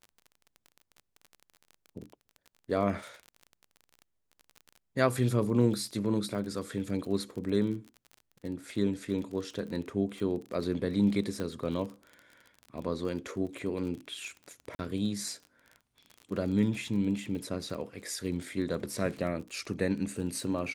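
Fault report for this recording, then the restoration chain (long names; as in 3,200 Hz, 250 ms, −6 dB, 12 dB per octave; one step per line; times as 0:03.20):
surface crackle 28 per second −38 dBFS
0:11.40: click −23 dBFS
0:14.75–0:14.79: drop-out 41 ms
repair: click removal
repair the gap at 0:14.75, 41 ms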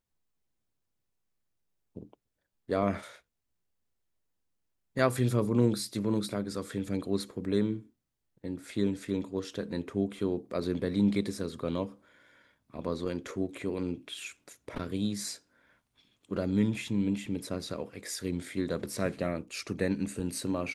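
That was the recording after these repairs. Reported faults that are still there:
0:11.40: click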